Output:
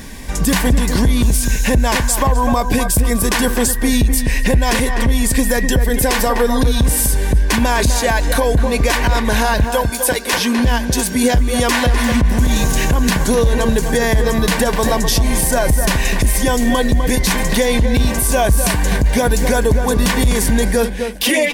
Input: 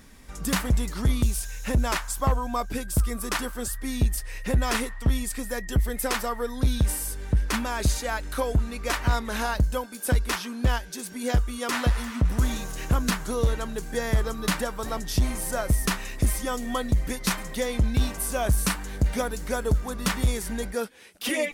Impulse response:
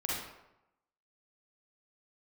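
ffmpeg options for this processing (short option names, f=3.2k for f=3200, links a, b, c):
-filter_complex "[0:a]asettb=1/sr,asplit=3[a][b][c];[a]atrim=end=9.644[d];[b]atrim=start=9.64:end=10.33,asetpts=PTS-STARTPTS,afade=t=in:d=0.004:c=qsin,afade=t=out:st=0.686:d=0.004:c=qsin,highpass=350[e];[c]atrim=start=10.326[f];[d][e]acrossfade=d=0.004:c1=hsin:c2=qsin[g];[g][f]acrossfade=d=0.004:c1=qsin:c2=hsin,acompressor=threshold=-26dB:ratio=6,asuperstop=centerf=1300:order=4:qfactor=4.9,asplit=2[h][i];[i]adelay=252,lowpass=f=1.9k:p=1,volume=-8.5dB,asplit=2[j][k];[k]adelay=252,lowpass=f=1.9k:p=1,volume=0.29,asplit=2[l][m];[m]adelay=252,lowpass=f=1.9k:p=1,volume=0.29[n];[h][j][l][n]amix=inputs=4:normalize=0,alimiter=level_in=23dB:limit=-1dB:release=50:level=0:latency=1,volume=-4.5dB"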